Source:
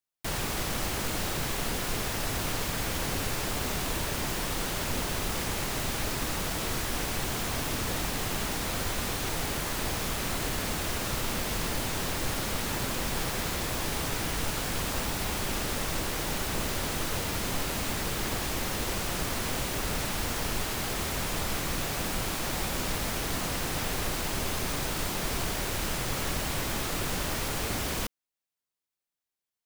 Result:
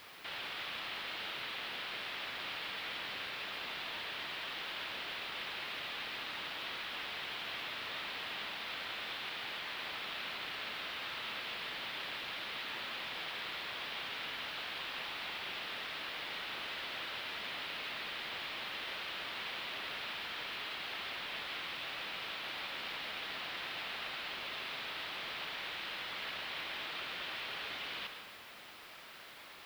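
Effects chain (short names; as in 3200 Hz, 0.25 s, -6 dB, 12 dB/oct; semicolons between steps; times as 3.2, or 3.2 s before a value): band-pass 3600 Hz, Q 1.7; added noise blue -40 dBFS; air absorption 410 m; reverb RT60 1.4 s, pre-delay 70 ms, DRR 6 dB; gain +6 dB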